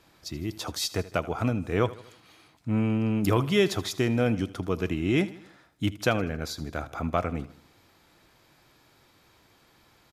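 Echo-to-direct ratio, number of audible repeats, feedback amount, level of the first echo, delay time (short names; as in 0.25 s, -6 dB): -16.5 dB, 3, 49%, -17.5 dB, 79 ms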